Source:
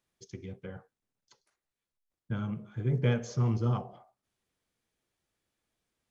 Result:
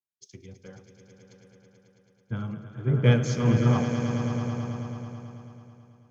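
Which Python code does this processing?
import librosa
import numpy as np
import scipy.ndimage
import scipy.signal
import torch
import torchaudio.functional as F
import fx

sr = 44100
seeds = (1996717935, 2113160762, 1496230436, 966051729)

y = fx.echo_swell(x, sr, ms=109, loudest=5, wet_db=-9.0)
y = fx.band_widen(y, sr, depth_pct=70)
y = y * 10.0 ** (3.5 / 20.0)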